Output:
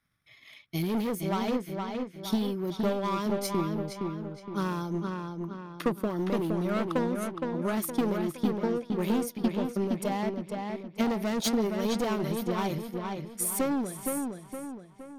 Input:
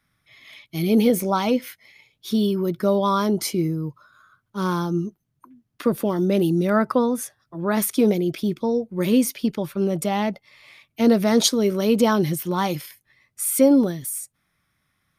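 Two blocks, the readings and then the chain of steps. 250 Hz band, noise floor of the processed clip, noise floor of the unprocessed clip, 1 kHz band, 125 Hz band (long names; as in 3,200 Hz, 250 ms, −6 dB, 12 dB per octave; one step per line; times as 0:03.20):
−8.0 dB, −54 dBFS, −74 dBFS, −7.0 dB, −7.0 dB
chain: hard clipping −18.5 dBFS, distortion −9 dB
transient designer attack +7 dB, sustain −7 dB
feedback echo with a low-pass in the loop 466 ms, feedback 47%, low-pass 4,000 Hz, level −4 dB
level −8.5 dB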